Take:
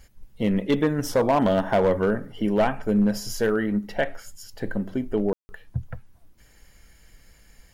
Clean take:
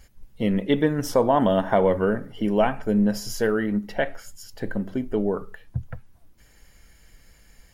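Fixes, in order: clip repair -14 dBFS; room tone fill 5.33–5.49

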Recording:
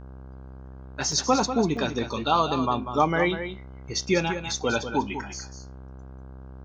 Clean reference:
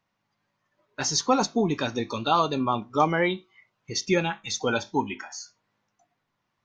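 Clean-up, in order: de-hum 65.3 Hz, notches 25; interpolate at 1.12/1.77, 2.1 ms; inverse comb 0.194 s -9.5 dB

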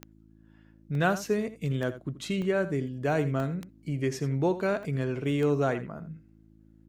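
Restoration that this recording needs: de-click; de-hum 54 Hz, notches 6; interpolate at 0.95/2.42/3.4/4.83/6.29, 1.4 ms; inverse comb 82 ms -14 dB

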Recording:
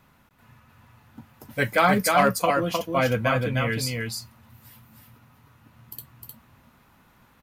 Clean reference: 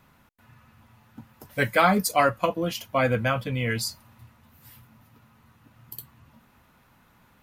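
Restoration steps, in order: clip repair -9.5 dBFS; inverse comb 0.308 s -3.5 dB

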